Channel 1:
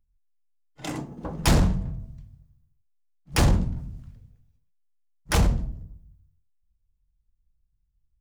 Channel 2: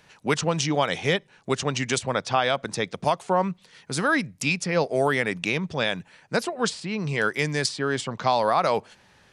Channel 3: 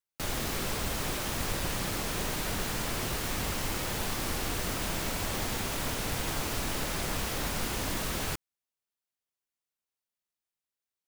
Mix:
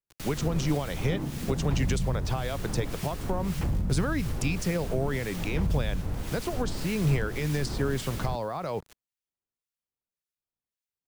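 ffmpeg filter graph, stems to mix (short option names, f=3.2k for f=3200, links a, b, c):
-filter_complex "[0:a]alimiter=limit=-19.5dB:level=0:latency=1,lowpass=2.2k,adelay=250,volume=-0.5dB[a];[1:a]acrusher=bits=6:mix=0:aa=0.000001,alimiter=limit=-17.5dB:level=0:latency=1:release=182,equalizer=f=220:t=o:w=0.74:g=-6.5,volume=-3dB[b];[2:a]acrossover=split=1500[c][d];[c]aeval=exprs='val(0)*(1-0.7/2+0.7/2*cos(2*PI*1.8*n/s))':c=same[e];[d]aeval=exprs='val(0)*(1-0.7/2-0.7/2*cos(2*PI*1.8*n/s))':c=same[f];[e][f]amix=inputs=2:normalize=0,volume=-3.5dB[g];[a][g]amix=inputs=2:normalize=0,acompressor=threshold=-36dB:ratio=6,volume=0dB[h];[b][h]amix=inputs=2:normalize=0,lowshelf=f=380:g=11.5,acrossover=split=380[i][j];[j]acompressor=threshold=-31dB:ratio=6[k];[i][k]amix=inputs=2:normalize=0"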